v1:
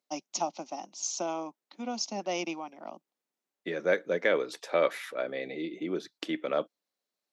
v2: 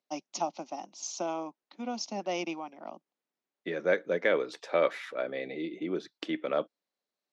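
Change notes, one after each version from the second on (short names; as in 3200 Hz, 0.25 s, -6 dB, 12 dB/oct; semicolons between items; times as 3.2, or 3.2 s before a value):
master: add air absorption 74 m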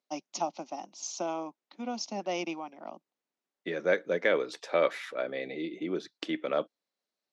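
second voice: add high shelf 4500 Hz +5 dB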